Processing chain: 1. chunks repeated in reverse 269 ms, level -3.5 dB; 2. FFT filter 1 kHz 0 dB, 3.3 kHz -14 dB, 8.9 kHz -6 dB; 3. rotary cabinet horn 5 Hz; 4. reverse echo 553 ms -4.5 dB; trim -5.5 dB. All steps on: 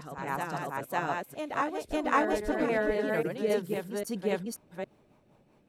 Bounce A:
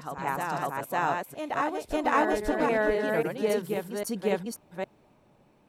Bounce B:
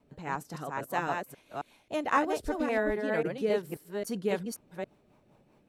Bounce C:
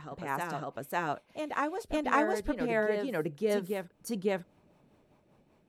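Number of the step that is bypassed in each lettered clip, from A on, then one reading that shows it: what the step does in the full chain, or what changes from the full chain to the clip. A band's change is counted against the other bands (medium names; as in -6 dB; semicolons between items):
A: 3, loudness change +2.5 LU; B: 4, loudness change -1.5 LU; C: 1, loudness change -1.5 LU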